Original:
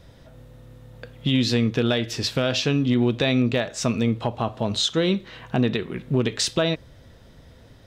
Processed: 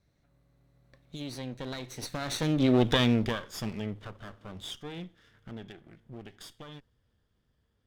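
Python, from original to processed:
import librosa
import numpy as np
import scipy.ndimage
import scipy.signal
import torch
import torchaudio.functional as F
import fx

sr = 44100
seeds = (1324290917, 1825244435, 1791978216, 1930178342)

y = fx.lower_of_two(x, sr, delay_ms=0.55)
y = fx.doppler_pass(y, sr, speed_mps=33, closest_m=8.0, pass_at_s=2.85)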